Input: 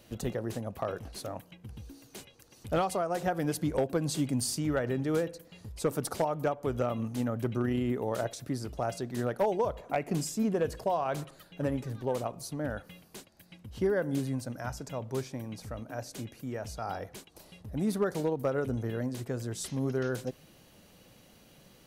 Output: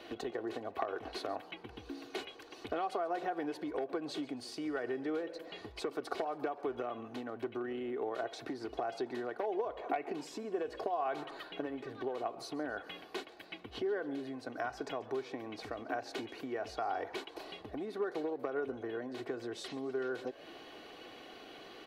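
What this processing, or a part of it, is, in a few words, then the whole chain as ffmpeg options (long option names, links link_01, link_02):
serial compression, peaks first: -filter_complex "[0:a]acompressor=threshold=-38dB:ratio=6,acompressor=threshold=-44dB:ratio=2.5,acrossover=split=260 3800:gain=0.0794 1 0.0708[link_01][link_02][link_03];[link_01][link_02][link_03]amix=inputs=3:normalize=0,equalizer=frequency=4100:width=4.6:gain=3,aecho=1:1:2.7:0.57,asplit=5[link_04][link_05][link_06][link_07][link_08];[link_05]adelay=137,afreqshift=87,volume=-20.5dB[link_09];[link_06]adelay=274,afreqshift=174,volume=-25.7dB[link_10];[link_07]adelay=411,afreqshift=261,volume=-30.9dB[link_11];[link_08]adelay=548,afreqshift=348,volume=-36.1dB[link_12];[link_04][link_09][link_10][link_11][link_12]amix=inputs=5:normalize=0,volume=10dB"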